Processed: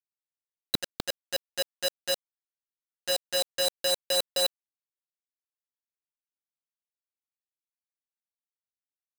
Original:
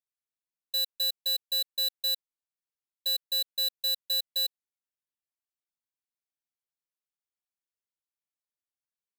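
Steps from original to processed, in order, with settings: high-order bell 3.9 kHz +12 dB; LFO low-pass saw up 4 Hz 270–1500 Hz; companded quantiser 2-bit; trim +5.5 dB

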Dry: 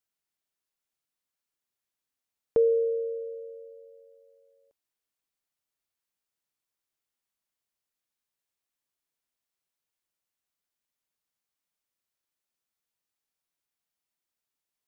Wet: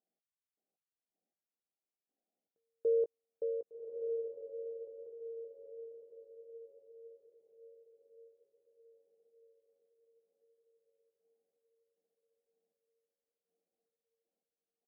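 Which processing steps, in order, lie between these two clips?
FFT band-pass 170–820 Hz; compression, threshold -34 dBFS, peak gain reduction 14 dB; trance gate "x..x..x....x" 79 bpm -60 dB; doubling 17 ms -11 dB; echo that smears into a reverb 1165 ms, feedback 46%, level -5.5 dB; trim +6.5 dB

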